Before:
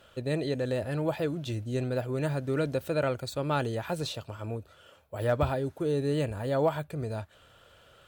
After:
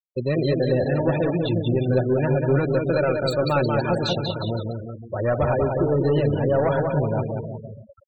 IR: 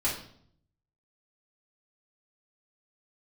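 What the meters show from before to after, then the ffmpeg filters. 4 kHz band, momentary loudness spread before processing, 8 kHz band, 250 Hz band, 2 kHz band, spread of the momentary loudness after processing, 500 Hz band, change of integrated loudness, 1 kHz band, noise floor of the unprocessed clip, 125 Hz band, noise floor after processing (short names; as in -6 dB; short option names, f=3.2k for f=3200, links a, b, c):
+8.0 dB, 10 LU, n/a, +9.0 dB, +7.5 dB, 9 LU, +9.0 dB, +8.5 dB, +7.5 dB, -59 dBFS, +9.5 dB, -46 dBFS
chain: -filter_complex "[0:a]aeval=exprs='0.178*(cos(1*acos(clip(val(0)/0.178,-1,1)))-cos(1*PI/2))+0.0251*(cos(5*acos(clip(val(0)/0.178,-1,1)))-cos(5*PI/2))':c=same,aecho=1:1:5.4:0.31,bandreject=f=153.3:t=h:w=4,bandreject=f=306.6:t=h:w=4,bandreject=f=459.9:t=h:w=4,asplit=2[a][b];[b]alimiter=level_in=1.5dB:limit=-24dB:level=0:latency=1:release=395,volume=-1.5dB,volume=2dB[c];[a][c]amix=inputs=2:normalize=0,aecho=1:1:190|361|514.9|653.4|778.1:0.631|0.398|0.251|0.158|0.1,afftfilt=real='re*gte(hypot(re,im),0.0562)':imag='im*gte(hypot(re,im),0.0562)':win_size=1024:overlap=0.75"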